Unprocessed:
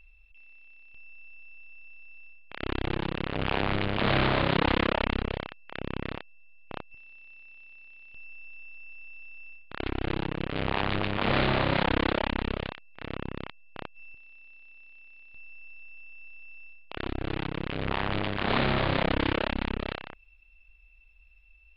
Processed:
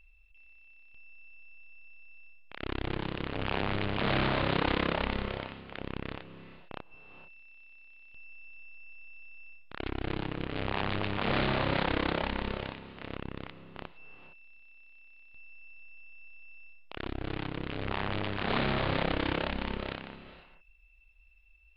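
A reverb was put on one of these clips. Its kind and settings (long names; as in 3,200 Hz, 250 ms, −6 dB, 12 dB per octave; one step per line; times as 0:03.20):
reverb whose tail is shaped and stops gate 490 ms rising, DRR 11.5 dB
level −4 dB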